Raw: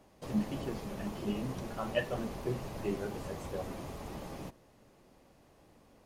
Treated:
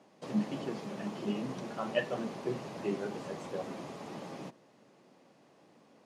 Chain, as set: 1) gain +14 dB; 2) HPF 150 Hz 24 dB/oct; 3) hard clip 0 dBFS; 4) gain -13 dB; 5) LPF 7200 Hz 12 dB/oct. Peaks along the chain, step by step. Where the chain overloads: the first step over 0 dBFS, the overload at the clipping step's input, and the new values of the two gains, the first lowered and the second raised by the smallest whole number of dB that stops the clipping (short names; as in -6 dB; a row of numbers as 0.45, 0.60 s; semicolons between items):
-4.0, -3.5, -3.5, -16.5, -16.5 dBFS; no overload